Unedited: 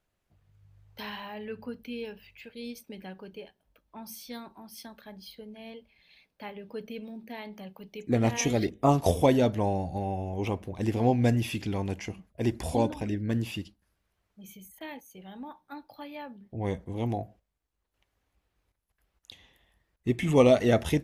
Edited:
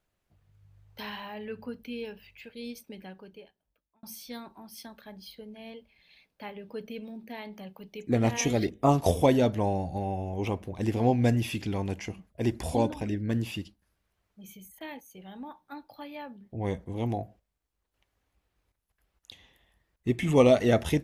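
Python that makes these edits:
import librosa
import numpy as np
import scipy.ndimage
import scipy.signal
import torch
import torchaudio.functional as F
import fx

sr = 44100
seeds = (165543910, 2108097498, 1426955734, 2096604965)

y = fx.edit(x, sr, fx.fade_out_span(start_s=2.81, length_s=1.22), tone=tone)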